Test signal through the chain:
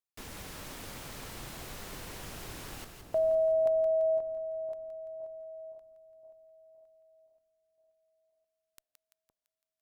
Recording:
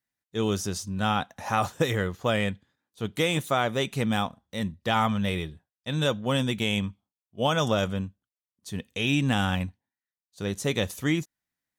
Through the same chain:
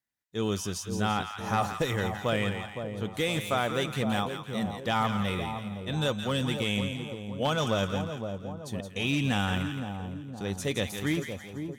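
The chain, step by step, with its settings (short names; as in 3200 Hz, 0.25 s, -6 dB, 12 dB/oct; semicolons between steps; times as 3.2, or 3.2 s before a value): one-sided clip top -19.5 dBFS, bottom -13 dBFS; split-band echo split 1000 Hz, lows 0.515 s, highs 0.169 s, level -7 dB; gain -3 dB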